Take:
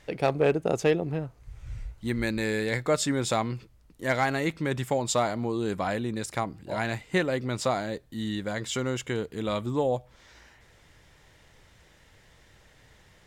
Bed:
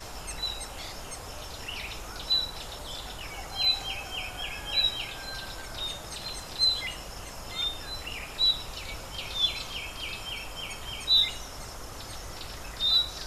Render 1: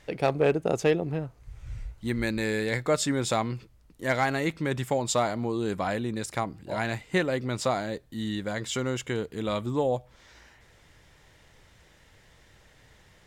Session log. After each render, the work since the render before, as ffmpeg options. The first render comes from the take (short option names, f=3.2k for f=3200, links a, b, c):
-af anull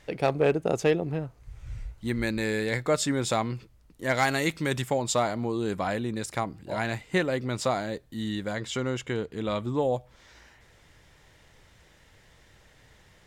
-filter_complex "[0:a]asettb=1/sr,asplit=3[a][b][c];[a]atrim=end=4.174[d];[b]atrim=start=4.17:end=4.82,asetpts=PTS-STARTPTS,afade=t=in:d=0.004:c=qsin,afade=t=out:st=0.646:d=0.004:c=qsin,highshelf=f=3k:g=10[e];[c]atrim=start=4.816[f];[d][e]acrossfade=d=0.004:c1=hsin:c2=qsin[g];[g][f]acrossfade=d=0.004:c1=qsin:c2=hsin,asettb=1/sr,asplit=3[h][i][j];[h]atrim=end=8.564[k];[i]atrim=start=8.56:end=9.83,asetpts=PTS-STARTPTS,afade=t=in:d=0.004:c=qsin,afade=t=out:st=1.266:d=0.004:c=qsin,highshelf=f=8.5k:g=-11[l];[j]atrim=start=9.826[m];[k][l]acrossfade=d=0.004:c1=hsin:c2=qsin[n];[n][m]acrossfade=d=0.004:c1=qsin:c2=hsin"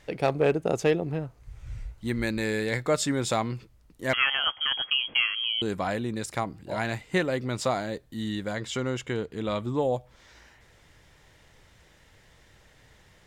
-filter_complex "[0:a]asettb=1/sr,asplit=3[a][b][c];[a]atrim=end=4.134[d];[b]atrim=start=4.13:end=5.62,asetpts=PTS-STARTPTS,afade=t=in:d=0.004:c=qsin,afade=t=out:st=1.486:d=0.004:c=qsin,lowpass=f=2.9k:t=q:w=0.5098,lowpass=f=2.9k:t=q:w=0.6013,lowpass=f=2.9k:t=q:w=0.9,lowpass=f=2.9k:t=q:w=2.563,afreqshift=-3400[e];[c]atrim=start=5.616[f];[d][e]acrossfade=d=0.004:c1=hsin:c2=qsin[g];[g][f]acrossfade=d=0.004:c1=qsin:c2=hsin"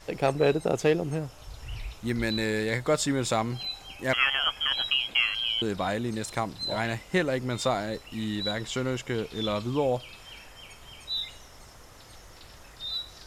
-filter_complex "[1:a]volume=-10dB[a];[0:a][a]amix=inputs=2:normalize=0"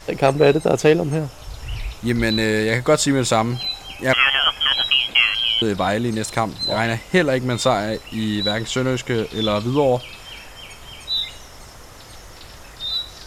-af "volume=9dB,alimiter=limit=-3dB:level=0:latency=1"